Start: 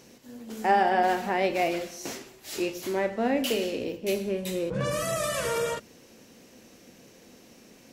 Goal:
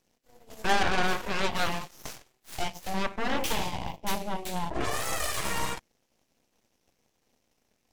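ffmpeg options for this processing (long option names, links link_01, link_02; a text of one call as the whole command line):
ffmpeg -i in.wav -af "bandreject=frequency=990:width=5.2,aeval=exprs='0.224*(cos(1*acos(clip(val(0)/0.224,-1,1)))-cos(1*PI/2))+0.0708*(cos(3*acos(clip(val(0)/0.224,-1,1)))-cos(3*PI/2))+0.0398*(cos(4*acos(clip(val(0)/0.224,-1,1)))-cos(4*PI/2))+0.0282*(cos(8*acos(clip(val(0)/0.224,-1,1)))-cos(8*PI/2))':channel_layout=same" out.wav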